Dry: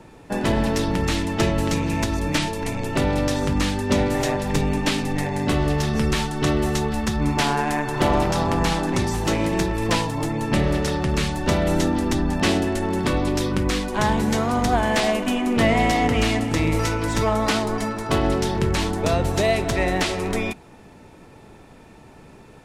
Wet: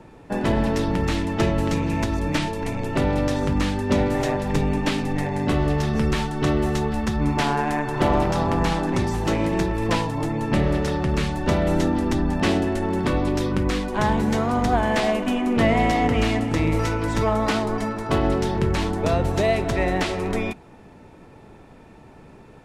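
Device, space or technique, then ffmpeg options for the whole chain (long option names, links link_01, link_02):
behind a face mask: -af "highshelf=frequency=3300:gain=-8"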